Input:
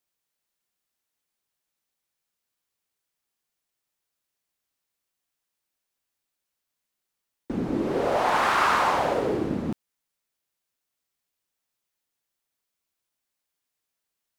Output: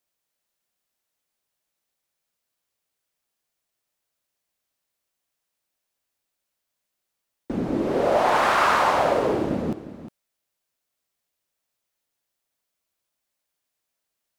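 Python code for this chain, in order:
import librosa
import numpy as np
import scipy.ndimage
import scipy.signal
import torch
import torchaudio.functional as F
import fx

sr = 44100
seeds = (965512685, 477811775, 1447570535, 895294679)

p1 = fx.peak_eq(x, sr, hz=610.0, db=4.5, octaves=0.46)
p2 = p1 + fx.echo_single(p1, sr, ms=357, db=-13.0, dry=0)
y = p2 * 10.0 ** (1.5 / 20.0)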